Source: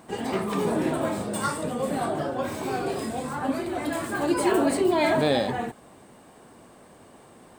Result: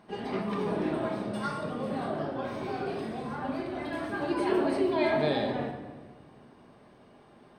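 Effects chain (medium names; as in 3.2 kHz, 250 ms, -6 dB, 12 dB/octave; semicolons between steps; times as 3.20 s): Savitzky-Golay filter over 15 samples; simulated room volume 1300 m³, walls mixed, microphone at 1.3 m; trim -7.5 dB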